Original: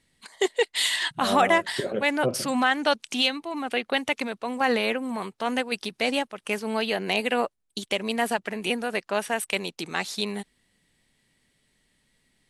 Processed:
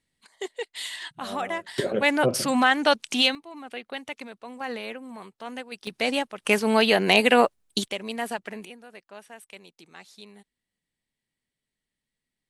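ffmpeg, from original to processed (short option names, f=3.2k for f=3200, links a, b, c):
-af "asetnsamples=n=441:p=0,asendcmd='1.78 volume volume 2.5dB;3.35 volume volume -10dB;5.87 volume volume 0dB;6.45 volume volume 7dB;7.88 volume volume -5dB;8.65 volume volume -18dB',volume=-10dB"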